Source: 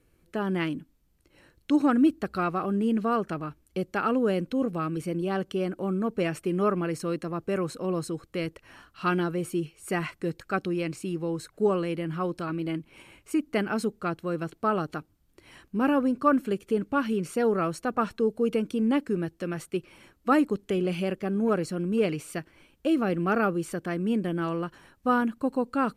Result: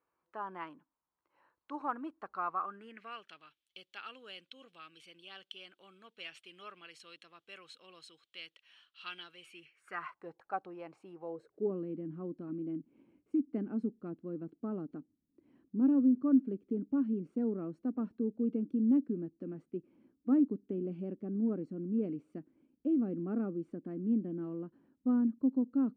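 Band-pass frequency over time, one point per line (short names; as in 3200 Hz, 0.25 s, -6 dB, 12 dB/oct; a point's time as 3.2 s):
band-pass, Q 4.2
2.53 s 1000 Hz
3.29 s 3300 Hz
9.35 s 3300 Hz
10.29 s 820 Hz
11.19 s 820 Hz
11.73 s 260 Hz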